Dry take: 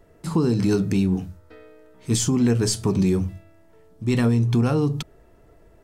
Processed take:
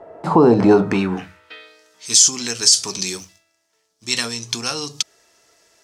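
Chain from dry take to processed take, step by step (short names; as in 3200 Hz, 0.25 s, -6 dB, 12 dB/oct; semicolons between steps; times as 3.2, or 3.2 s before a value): band-pass sweep 730 Hz -> 5700 Hz, 0.71–1.86; 3.17–4.03 power-law curve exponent 1.4; maximiser +24 dB; gain -1 dB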